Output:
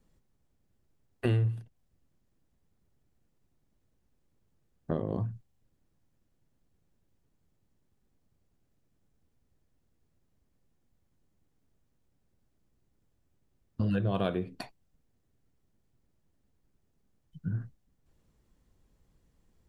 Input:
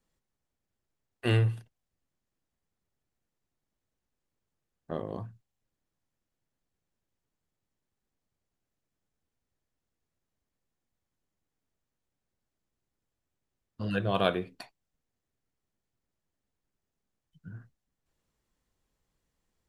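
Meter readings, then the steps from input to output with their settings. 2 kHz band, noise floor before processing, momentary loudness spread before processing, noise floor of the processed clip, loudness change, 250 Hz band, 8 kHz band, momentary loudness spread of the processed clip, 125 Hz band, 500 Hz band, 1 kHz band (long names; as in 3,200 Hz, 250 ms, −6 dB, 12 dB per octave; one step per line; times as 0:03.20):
−7.0 dB, below −85 dBFS, 22 LU, −74 dBFS, −2.0 dB, +2.0 dB, can't be measured, 18 LU, +0.5 dB, −2.0 dB, −5.5 dB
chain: low-shelf EQ 490 Hz +11.5 dB
downward compressor 4 to 1, threshold −30 dBFS, peak gain reduction 16 dB
level +2.5 dB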